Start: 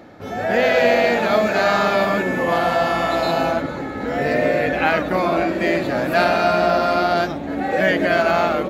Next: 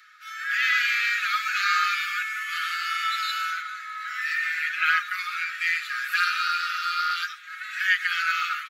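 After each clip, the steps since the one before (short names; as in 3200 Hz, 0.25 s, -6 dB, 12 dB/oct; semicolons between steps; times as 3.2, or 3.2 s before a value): Chebyshev high-pass 1200 Hz, order 10; comb 5.5 ms, depth 73%; gain -1.5 dB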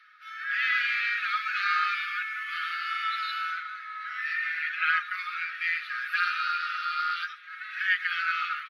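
running mean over 6 samples; gain -2.5 dB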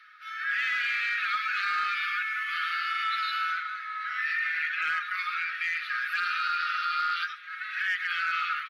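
in parallel at -7.5 dB: hard clip -23 dBFS, distortion -15 dB; on the sum: limiter -21 dBFS, peak gain reduction 8.5 dB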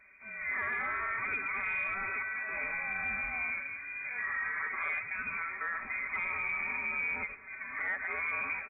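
inverted band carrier 3700 Hz; gain -5.5 dB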